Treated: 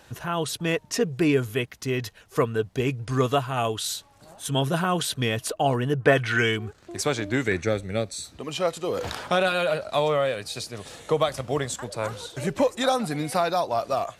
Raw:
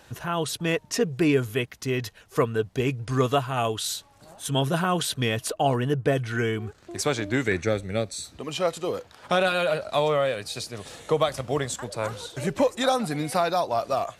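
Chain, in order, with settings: 6–6.56 bell 1100 Hz -> 4400 Hz +11 dB 2.5 oct; 8.82–9.32 sustainer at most 34 dB/s

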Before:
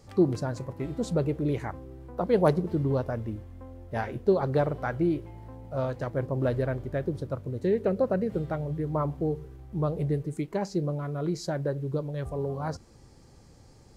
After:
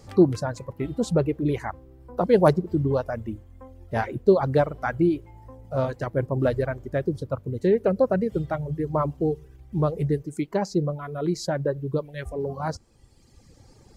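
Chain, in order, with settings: reverb removal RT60 1.5 s; 12.05–12.45 graphic EQ 125/1000/2000 Hz -6/-11/+9 dB; gain +5.5 dB

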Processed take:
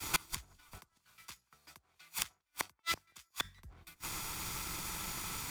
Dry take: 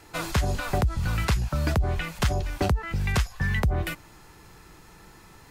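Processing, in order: minimum comb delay 0.86 ms; high shelf 5400 Hz +5.5 dB; flipped gate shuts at -22 dBFS, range -29 dB; tilt shelf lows -4.5 dB, about 1500 Hz; compressor 1.5:1, threshold -56 dBFS, peak gain reduction 9.5 dB; 0.78–3.44 HPF 680 Hz 6 dB/oct; analogue delay 0.183 s, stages 2048, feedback 50%, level -15 dB; expander -48 dBFS; three-band squash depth 40%; gain +16.5 dB

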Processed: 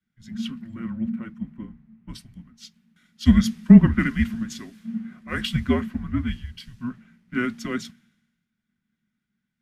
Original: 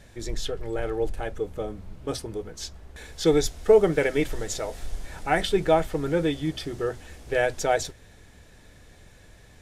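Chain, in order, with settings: frequency shift -240 Hz; graphic EQ 250/500/2000/8000 Hz +8/-11/+7/-6 dB; three-band expander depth 100%; gain -6 dB

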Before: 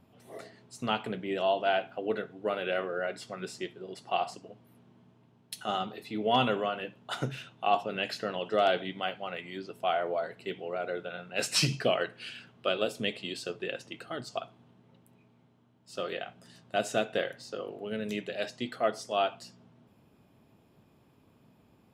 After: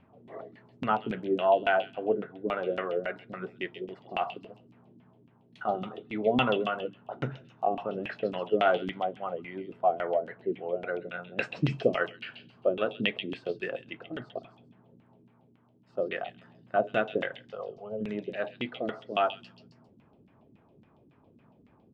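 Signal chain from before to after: LFO low-pass saw down 3.6 Hz 230–2800 Hz; 17.52–18.01 fixed phaser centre 730 Hz, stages 4; delay with a stepping band-pass 0.133 s, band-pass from 4200 Hz, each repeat 0.7 oct, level -2.5 dB

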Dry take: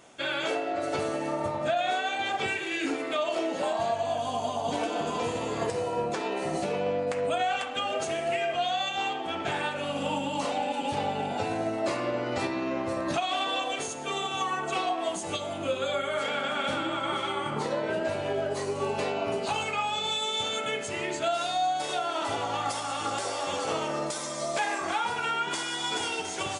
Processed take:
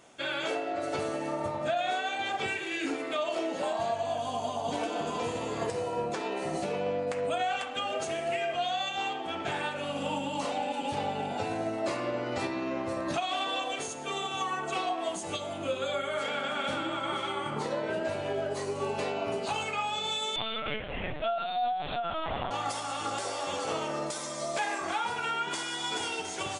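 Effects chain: 20.36–22.51 LPC vocoder at 8 kHz pitch kept; gain -2.5 dB

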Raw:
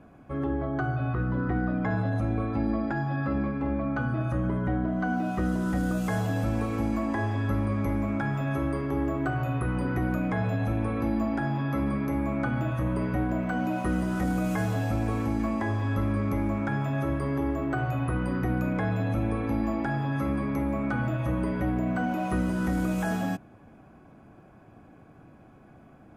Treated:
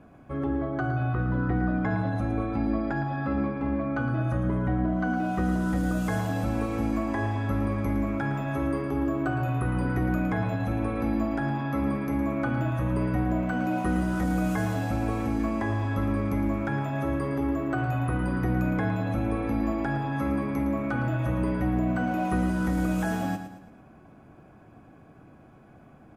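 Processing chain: 8.83–9.48 notch 2000 Hz, Q 10; feedback echo 0.112 s, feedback 41%, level -9.5 dB

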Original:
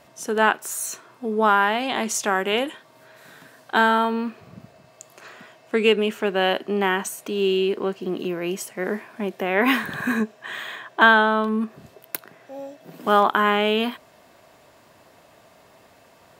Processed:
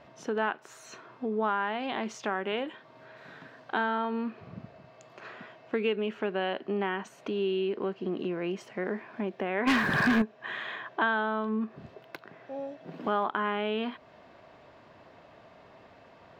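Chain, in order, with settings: compressor 2:1, threshold -32 dBFS, peak gain reduction 12.5 dB; air absorption 220 m; 9.67–10.22 sample leveller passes 3

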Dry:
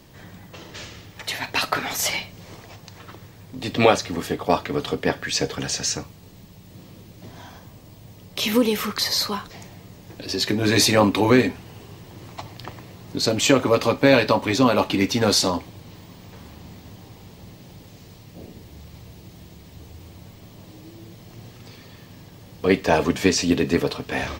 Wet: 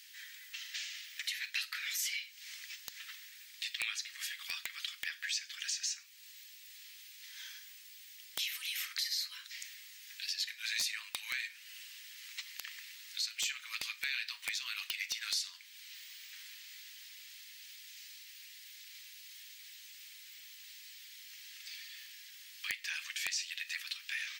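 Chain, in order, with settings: steep high-pass 1800 Hz 36 dB/oct; compressor 3:1, threshold -41 dBFS, peak gain reduction 18.5 dB; wrapped overs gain 24.5 dB; gain +2 dB

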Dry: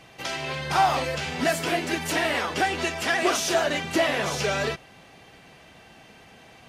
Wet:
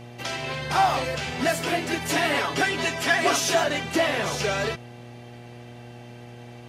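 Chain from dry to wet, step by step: 2.09–3.64 comb 7.1 ms, depth 77%; buzz 120 Hz, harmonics 7, -43 dBFS -5 dB/oct

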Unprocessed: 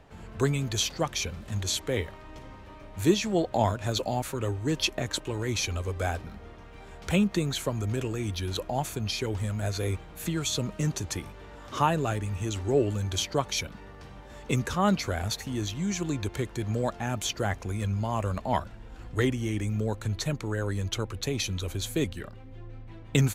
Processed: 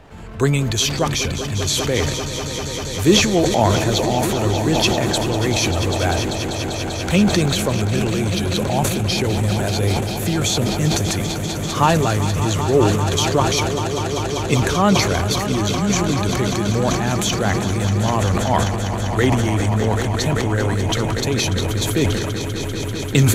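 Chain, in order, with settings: swelling echo 0.196 s, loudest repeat 5, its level -12.5 dB; transient shaper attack -1 dB, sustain +8 dB; gain +8.5 dB

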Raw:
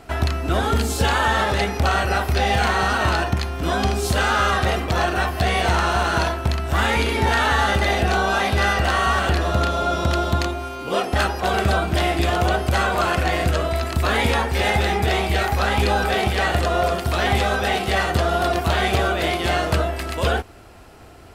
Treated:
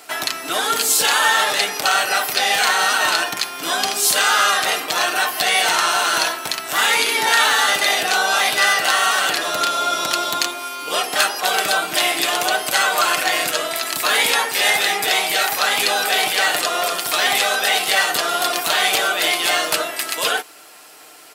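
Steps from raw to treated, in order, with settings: HPF 250 Hz 12 dB/oct; tilt +4 dB/oct; comb 6.6 ms, depth 41%; gain +1 dB

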